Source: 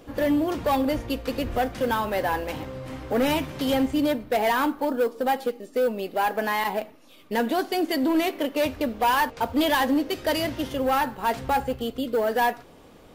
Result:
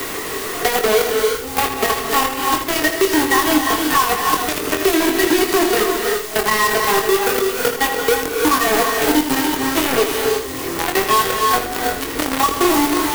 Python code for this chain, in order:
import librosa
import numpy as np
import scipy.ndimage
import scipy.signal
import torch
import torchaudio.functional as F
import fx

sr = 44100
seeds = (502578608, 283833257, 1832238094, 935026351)

p1 = np.flip(x).copy()
p2 = fx.high_shelf(p1, sr, hz=7400.0, db=9.5)
p3 = p2 + 0.91 * np.pad(p2, (int(2.7 * sr / 1000.0), 0))[:len(p2)]
p4 = fx.quant_dither(p3, sr, seeds[0], bits=6, dither='triangular')
p5 = fx.small_body(p4, sr, hz=(400.0, 1100.0, 1900.0), ring_ms=30, db=13)
p6 = fx.quant_companded(p5, sr, bits=2)
p7 = p6 + fx.room_early_taps(p6, sr, ms=(23, 79), db=(-5.5, -9.5), dry=0)
p8 = fx.rev_gated(p7, sr, seeds[1], gate_ms=370, shape='rising', drr_db=3.5)
p9 = fx.band_squash(p8, sr, depth_pct=70)
y = p9 * librosa.db_to_amplitude(-11.0)